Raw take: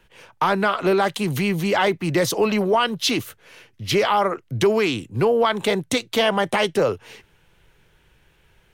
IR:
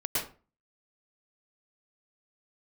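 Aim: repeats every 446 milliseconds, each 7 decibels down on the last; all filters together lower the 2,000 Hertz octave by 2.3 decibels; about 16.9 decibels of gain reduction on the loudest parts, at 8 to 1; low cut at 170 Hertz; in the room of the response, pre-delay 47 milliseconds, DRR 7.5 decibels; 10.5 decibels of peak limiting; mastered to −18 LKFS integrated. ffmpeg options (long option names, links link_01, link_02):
-filter_complex "[0:a]highpass=170,equalizer=frequency=2000:width_type=o:gain=-3,acompressor=threshold=-33dB:ratio=8,alimiter=level_in=3.5dB:limit=-24dB:level=0:latency=1,volume=-3.5dB,aecho=1:1:446|892|1338|1784|2230:0.447|0.201|0.0905|0.0407|0.0183,asplit=2[link_01][link_02];[1:a]atrim=start_sample=2205,adelay=47[link_03];[link_02][link_03]afir=irnorm=-1:irlink=0,volume=-15dB[link_04];[link_01][link_04]amix=inputs=2:normalize=0,volume=18.5dB"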